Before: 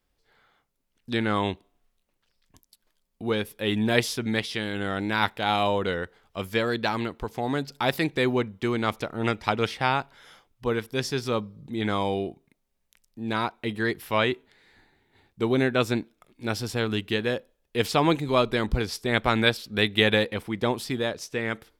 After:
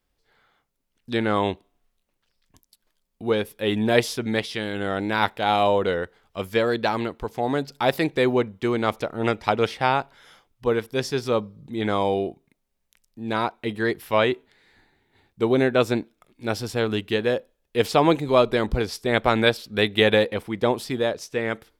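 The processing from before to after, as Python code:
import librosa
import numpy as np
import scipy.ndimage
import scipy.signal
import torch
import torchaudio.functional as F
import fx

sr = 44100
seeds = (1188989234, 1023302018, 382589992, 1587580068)

y = fx.dynamic_eq(x, sr, hz=560.0, q=0.87, threshold_db=-35.0, ratio=4.0, max_db=6)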